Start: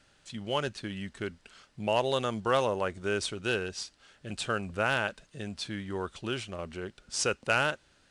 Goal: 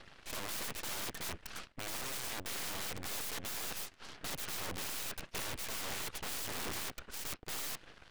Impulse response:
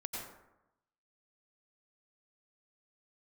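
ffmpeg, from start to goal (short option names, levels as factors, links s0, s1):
-af "highshelf=f=3500:t=q:w=1.5:g=-10.5,areverse,acompressor=threshold=0.0178:ratio=12,areverse,aeval=exprs='0.0168*(abs(mod(val(0)/0.0168+3,4)-2)-1)':c=same,aphaser=in_gain=1:out_gain=1:delay=2.7:decay=0.34:speed=1.9:type=sinusoidal,aeval=exprs='(mod(158*val(0)+1,2)-1)/158':c=same,aeval=exprs='0.00668*(cos(1*acos(clip(val(0)/0.00668,-1,1)))-cos(1*PI/2))+0.00188*(cos(2*acos(clip(val(0)/0.00668,-1,1)))-cos(2*PI/2))+0.00188*(cos(3*acos(clip(val(0)/0.00668,-1,1)))-cos(3*PI/2))+0.000944*(cos(4*acos(clip(val(0)/0.00668,-1,1)))-cos(4*PI/2))+0.00188*(cos(6*acos(clip(val(0)/0.00668,-1,1)))-cos(6*PI/2))':c=same,volume=2.99"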